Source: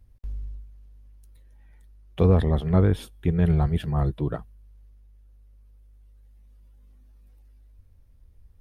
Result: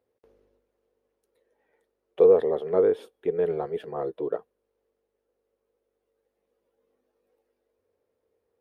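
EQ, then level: resonant high-pass 450 Hz, resonance Q 4.9; high shelf 3200 Hz -11 dB; -4.0 dB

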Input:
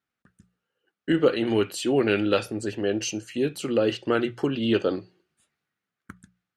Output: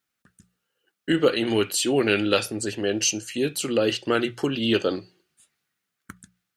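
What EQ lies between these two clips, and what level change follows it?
high shelf 3000 Hz +11.5 dB; 0.0 dB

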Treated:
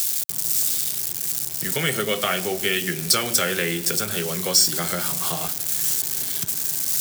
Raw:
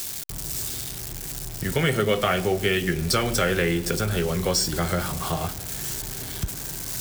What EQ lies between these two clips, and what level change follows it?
HPF 130 Hz 24 dB/oct; high shelf 2000 Hz +8.5 dB; high shelf 6000 Hz +5.5 dB; -3.5 dB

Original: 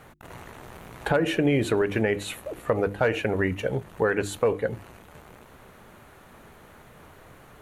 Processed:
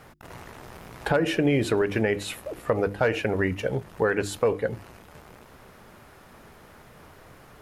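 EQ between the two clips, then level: bell 5100 Hz +9.5 dB 0.22 oct; 0.0 dB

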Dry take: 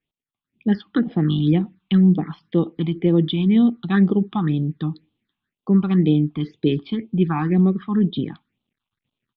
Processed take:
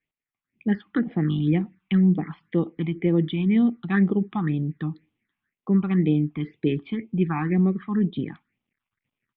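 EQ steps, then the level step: dynamic EQ 1600 Hz, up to -4 dB, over -41 dBFS, Q 0.95; synth low-pass 2100 Hz, resonance Q 3.3; -4.0 dB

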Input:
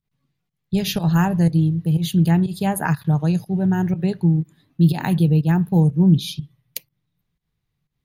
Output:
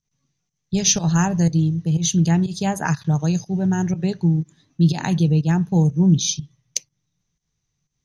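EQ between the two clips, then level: synth low-pass 6100 Hz, resonance Q 15; -1.0 dB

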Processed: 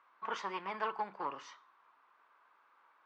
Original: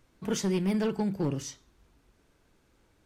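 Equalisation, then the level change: dynamic EQ 1400 Hz, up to -4 dB, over -51 dBFS, Q 1.5; ladder band-pass 1200 Hz, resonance 65%; air absorption 75 m; +15.0 dB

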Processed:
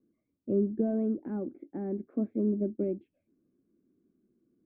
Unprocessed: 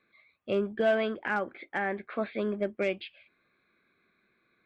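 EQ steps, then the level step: synth low-pass 290 Hz, resonance Q 3.4; 0.0 dB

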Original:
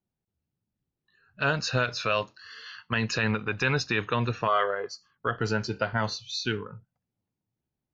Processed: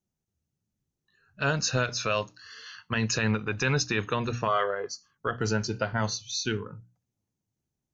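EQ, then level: low shelf 420 Hz +5 dB; bell 6300 Hz +12 dB 0.46 oct; notches 60/120/180/240/300 Hz; -2.5 dB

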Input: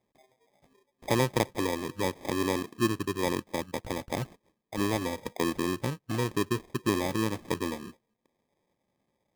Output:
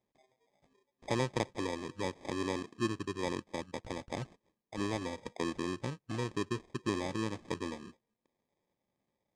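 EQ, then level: LPF 8200 Hz 24 dB/oct; -6.5 dB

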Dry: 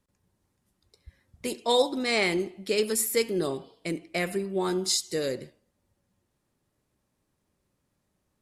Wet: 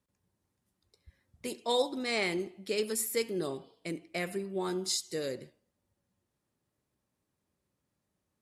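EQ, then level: HPF 53 Hz; -6.0 dB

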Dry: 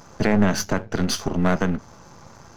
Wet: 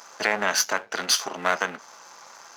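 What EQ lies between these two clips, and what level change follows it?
Bessel high-pass 1100 Hz, order 2; +5.5 dB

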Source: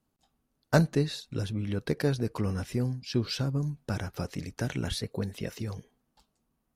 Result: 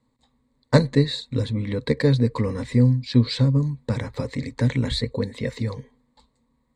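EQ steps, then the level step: ripple EQ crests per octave 1, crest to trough 14 dB; dynamic EQ 880 Hz, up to -4 dB, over -41 dBFS, Q 1.2; air absorption 75 m; +6.5 dB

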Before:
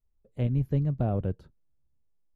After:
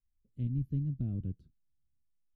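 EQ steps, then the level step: EQ curve 290 Hz 0 dB, 510 Hz -20 dB, 870 Hz -28 dB, 3400 Hz -9 dB; -6.5 dB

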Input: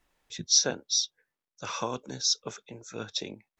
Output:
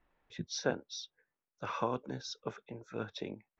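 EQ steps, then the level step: LPF 2000 Hz 12 dB/oct; -1.0 dB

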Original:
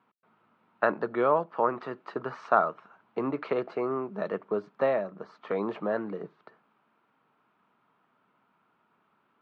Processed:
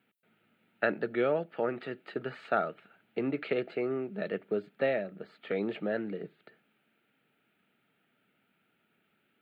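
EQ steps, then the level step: high shelf 2600 Hz +10 dB; fixed phaser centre 2500 Hz, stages 4; 0.0 dB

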